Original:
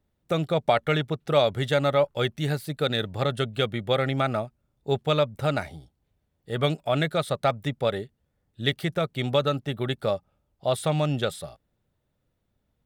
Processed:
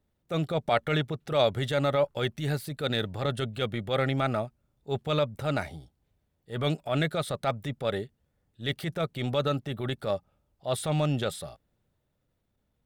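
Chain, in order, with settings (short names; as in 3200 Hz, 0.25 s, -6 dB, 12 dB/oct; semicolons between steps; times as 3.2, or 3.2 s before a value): transient shaper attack -8 dB, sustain +1 dB; gain -1 dB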